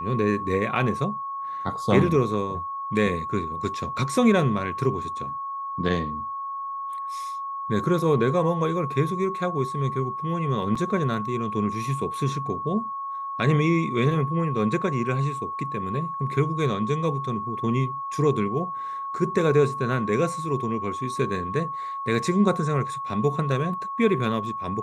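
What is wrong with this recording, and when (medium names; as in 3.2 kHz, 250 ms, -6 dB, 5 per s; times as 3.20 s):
whine 1.1 kHz -29 dBFS
10.75 s: dropout 4.9 ms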